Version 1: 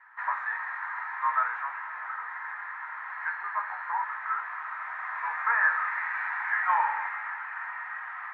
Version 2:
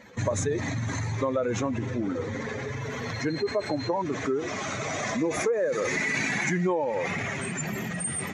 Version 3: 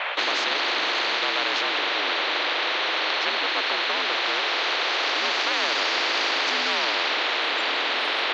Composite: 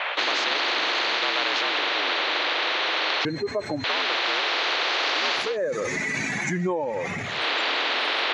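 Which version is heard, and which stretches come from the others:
3
3.25–3.84 from 2
5.46–7.33 from 2, crossfade 0.24 s
not used: 1

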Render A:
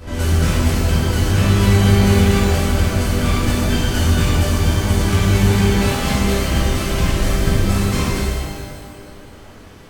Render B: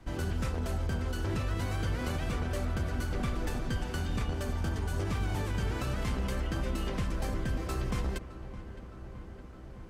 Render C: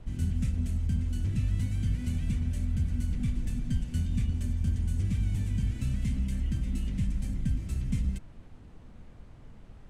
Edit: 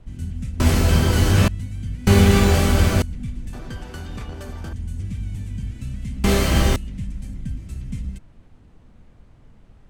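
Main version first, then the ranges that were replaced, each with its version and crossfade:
C
0.6–1.48 from A
2.07–3.02 from A
3.53–4.73 from B
6.24–6.76 from A

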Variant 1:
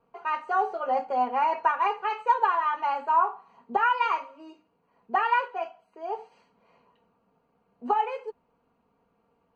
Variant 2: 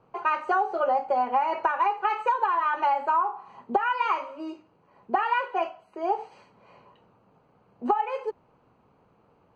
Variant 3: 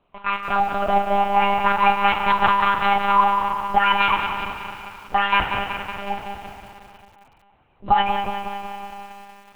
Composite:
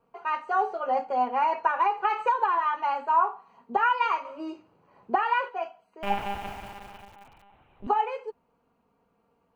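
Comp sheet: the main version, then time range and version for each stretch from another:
1
1.67–2.58 from 2
4.25–5.49 from 2
6.03–7.87 from 3

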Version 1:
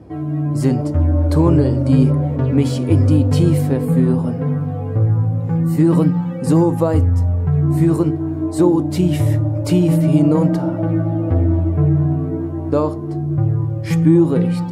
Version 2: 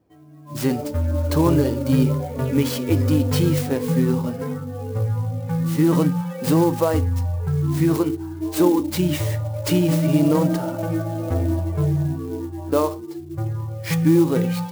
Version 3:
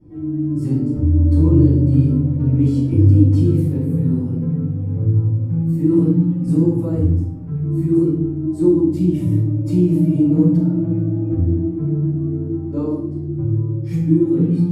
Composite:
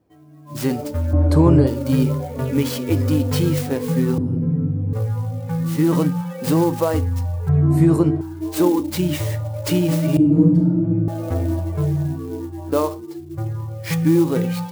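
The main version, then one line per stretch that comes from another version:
2
1.13–1.67 from 1
4.18–4.93 from 3
7.49–8.21 from 1
10.17–11.08 from 3

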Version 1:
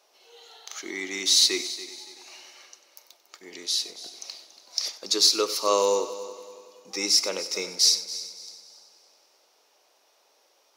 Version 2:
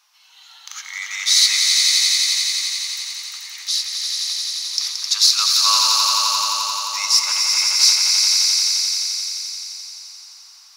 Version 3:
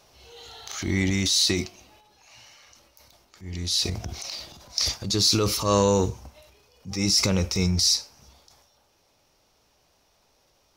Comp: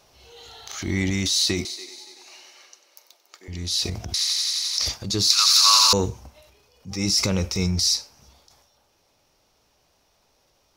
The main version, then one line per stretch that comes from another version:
3
1.65–3.48 from 1
4.14–4.78 from 2
5.3–5.93 from 2

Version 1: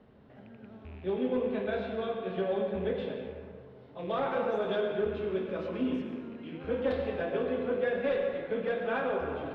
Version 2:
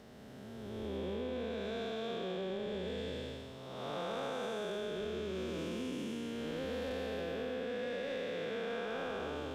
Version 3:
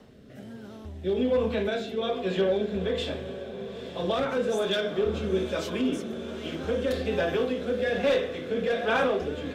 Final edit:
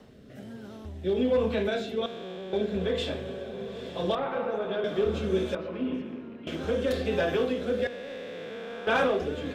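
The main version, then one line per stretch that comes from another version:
3
2.06–2.53 from 2
4.15–4.84 from 1
5.55–6.47 from 1
7.87–8.87 from 2

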